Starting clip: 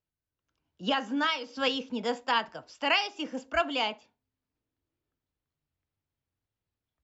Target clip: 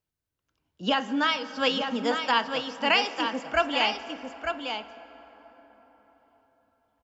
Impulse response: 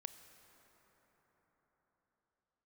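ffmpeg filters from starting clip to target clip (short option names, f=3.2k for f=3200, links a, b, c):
-filter_complex "[0:a]aecho=1:1:899:0.473,asplit=2[a][b];[1:a]atrim=start_sample=2205[c];[b][c]afir=irnorm=-1:irlink=0,volume=8dB[d];[a][d]amix=inputs=2:normalize=0,volume=-4.5dB"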